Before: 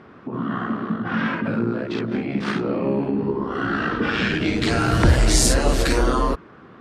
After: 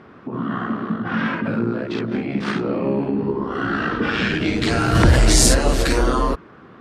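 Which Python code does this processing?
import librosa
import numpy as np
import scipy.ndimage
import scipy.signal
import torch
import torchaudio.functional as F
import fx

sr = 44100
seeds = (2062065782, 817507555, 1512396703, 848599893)

y = fx.brickwall_lowpass(x, sr, high_hz=9600.0, at=(2.51, 3.5))
y = fx.env_flatten(y, sr, amount_pct=50, at=(4.95, 5.55))
y = F.gain(torch.from_numpy(y), 1.0).numpy()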